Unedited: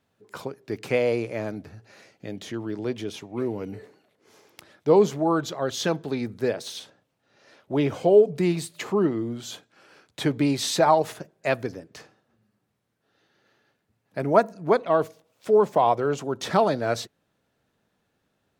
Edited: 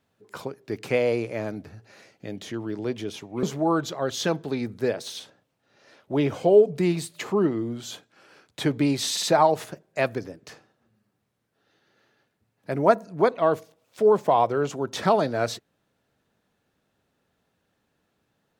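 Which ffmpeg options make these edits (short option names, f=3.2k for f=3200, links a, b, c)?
-filter_complex "[0:a]asplit=4[a][b][c][d];[a]atrim=end=3.432[e];[b]atrim=start=5.028:end=10.772[f];[c]atrim=start=10.708:end=10.772[g];[d]atrim=start=10.708[h];[e][f]acrossfade=d=0.004:c1=hsin:c2=hsin[i];[i][g]acrossfade=d=0.004:c1=hsin:c2=hsin[j];[j][h]acrossfade=d=0.004:c1=hsin:c2=hsin"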